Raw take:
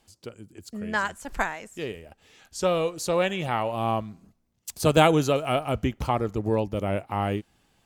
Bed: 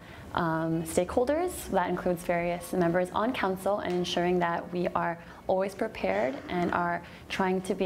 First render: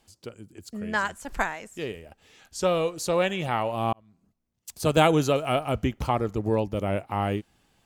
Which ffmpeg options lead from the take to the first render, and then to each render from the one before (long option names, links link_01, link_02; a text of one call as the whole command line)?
ffmpeg -i in.wav -filter_complex "[0:a]asplit=2[link_01][link_02];[link_01]atrim=end=3.93,asetpts=PTS-STARTPTS,afade=type=out:start_time=3.926:duration=0.004:curve=hsin[link_03];[link_02]atrim=start=3.93,asetpts=PTS-STARTPTS,afade=type=in:duration=1.28[link_04];[link_03][link_04]concat=n=2:v=0:a=1" out.wav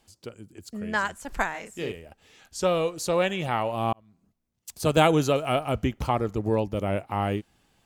ffmpeg -i in.wav -filter_complex "[0:a]asettb=1/sr,asplit=3[link_01][link_02][link_03];[link_01]atrim=end=1.514[link_04];[link_02]atrim=start=1.51:end=1.92,asetpts=PTS-STARTPTS,afade=type=in:duration=0.004:curve=qsin,afade=type=out:start_time=0.406:duration=0.004:curve=qsin,asplit=2[link_05][link_06];[link_06]adelay=35,volume=-5dB[link_07];[link_05][link_07]amix=inputs=2:normalize=0,atrim=end_sample=18081[link_08];[link_03]atrim=start=1.916[link_09];[link_04][link_08]acrossfade=duration=0.004:curve1=hsin:curve2=qsin[link_10];[link_10][link_09]acrossfade=duration=0.004:curve1=qsin:curve2=hsin" out.wav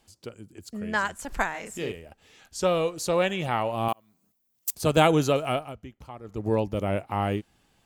ffmpeg -i in.wav -filter_complex "[0:a]asettb=1/sr,asplit=3[link_01][link_02][link_03];[link_01]atrim=end=1.194[link_04];[link_02]atrim=start=1.19:end=1.82,asetpts=PTS-STARTPTS,afade=type=in:duration=0.004:curve=qsin,afade=type=out:start_time=0.626:duration=0.004:curve=qsin,acompressor=mode=upward:threshold=-31dB:ratio=2.5:attack=3.2:release=140:knee=2.83:detection=peak[link_05];[link_03]atrim=start=1.816[link_06];[link_04][link_05]acrossfade=duration=0.004:curve1=hsin:curve2=qsin[link_07];[link_07][link_06]acrossfade=duration=0.004:curve1=qsin:curve2=hsin,asettb=1/sr,asplit=3[link_08][link_09][link_10];[link_08]atrim=end=3.884[link_11];[link_09]atrim=start=3.88:end=4.75,asetpts=PTS-STARTPTS,afade=type=in:duration=0.004:curve=qsin,afade=type=out:start_time=0.866:duration=0.004:curve=qsin,aemphasis=mode=production:type=bsi[link_12];[link_10]atrim=start=4.746[link_13];[link_11][link_12]acrossfade=duration=0.004:curve1=hsin:curve2=qsin[link_14];[link_14][link_13]acrossfade=duration=0.004:curve1=qsin:curve2=hsin,asplit=3[link_15][link_16][link_17];[link_15]atrim=end=5.75,asetpts=PTS-STARTPTS,afade=type=out:start_time=5.46:duration=0.29:silence=0.141254[link_18];[link_16]atrim=start=5.75:end=6.23,asetpts=PTS-STARTPTS,volume=-17dB[link_19];[link_17]atrim=start=6.23,asetpts=PTS-STARTPTS,afade=type=in:duration=0.29:silence=0.141254[link_20];[link_18][link_19][link_20]concat=n=3:v=0:a=1" out.wav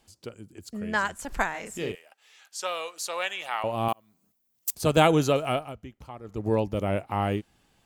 ffmpeg -i in.wav -filter_complex "[0:a]asettb=1/sr,asplit=3[link_01][link_02][link_03];[link_01]atrim=end=1.954[link_04];[link_02]atrim=start=1.95:end=3.64,asetpts=PTS-STARTPTS,afade=type=in:duration=0.004:curve=qsin,afade=type=out:start_time=1.686:duration=0.004:curve=qsin,highpass=970[link_05];[link_03]atrim=start=3.636[link_06];[link_04][link_05]acrossfade=duration=0.004:curve1=hsin:curve2=qsin[link_07];[link_07][link_06]acrossfade=duration=0.004:curve1=qsin:curve2=hsin" out.wav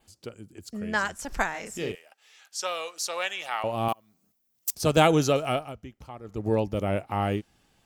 ffmpeg -i in.wav -af "bandreject=frequency=1000:width=21,adynamicequalizer=threshold=0.00178:dfrequency=5500:dqfactor=3.6:tfrequency=5500:tqfactor=3.6:attack=5:release=100:ratio=0.375:range=4:mode=boostabove:tftype=bell" out.wav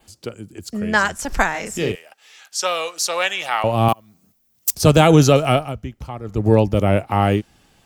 ffmpeg -i in.wav -filter_complex "[0:a]acrossover=split=180[link_01][link_02];[link_01]dynaudnorm=framelen=410:gausssize=9:maxgain=6.5dB[link_03];[link_03][link_02]amix=inputs=2:normalize=0,alimiter=level_in=9.5dB:limit=-1dB:release=50:level=0:latency=1" out.wav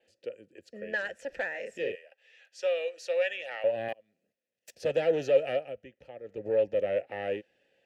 ffmpeg -i in.wav -filter_complex "[0:a]asoftclip=type=tanh:threshold=-10.5dB,asplit=3[link_01][link_02][link_03];[link_01]bandpass=frequency=530:width_type=q:width=8,volume=0dB[link_04];[link_02]bandpass=frequency=1840:width_type=q:width=8,volume=-6dB[link_05];[link_03]bandpass=frequency=2480:width_type=q:width=8,volume=-9dB[link_06];[link_04][link_05][link_06]amix=inputs=3:normalize=0" out.wav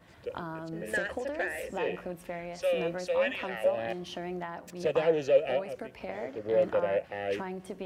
ffmpeg -i in.wav -i bed.wav -filter_complex "[1:a]volume=-10.5dB[link_01];[0:a][link_01]amix=inputs=2:normalize=0" out.wav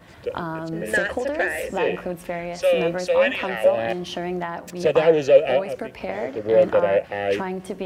ffmpeg -i in.wav -af "volume=9.5dB" out.wav